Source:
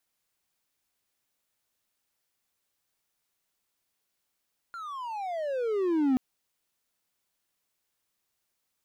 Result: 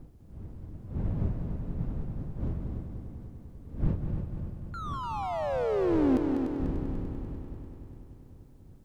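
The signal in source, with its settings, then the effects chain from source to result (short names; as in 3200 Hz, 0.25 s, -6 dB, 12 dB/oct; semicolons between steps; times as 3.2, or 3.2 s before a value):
gliding synth tone triangle, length 1.43 s, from 1410 Hz, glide -30 st, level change +16.5 dB, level -18.5 dB
wind noise 130 Hz -37 dBFS; on a send: multi-head echo 98 ms, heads second and third, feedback 63%, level -7 dB; on the sum: Doppler distortion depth 0.21 ms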